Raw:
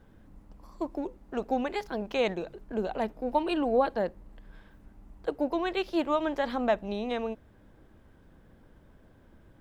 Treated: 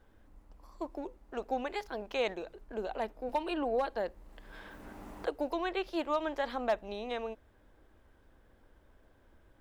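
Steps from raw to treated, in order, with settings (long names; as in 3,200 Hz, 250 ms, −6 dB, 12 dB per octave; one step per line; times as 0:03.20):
parametric band 160 Hz −11.5 dB 1.5 octaves
gain into a clipping stage and back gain 18 dB
0:03.29–0:05.87: multiband upward and downward compressor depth 70%
level −3 dB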